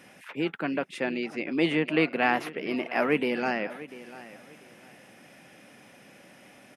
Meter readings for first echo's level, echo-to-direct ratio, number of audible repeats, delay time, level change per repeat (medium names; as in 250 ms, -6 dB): -17.0 dB, -17.0 dB, 2, 694 ms, -12.0 dB